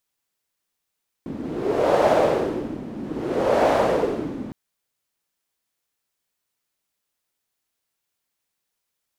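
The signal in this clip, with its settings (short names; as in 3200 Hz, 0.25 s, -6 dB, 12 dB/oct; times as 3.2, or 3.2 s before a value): wind-like swept noise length 3.26 s, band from 250 Hz, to 620 Hz, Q 3, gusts 2, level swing 15 dB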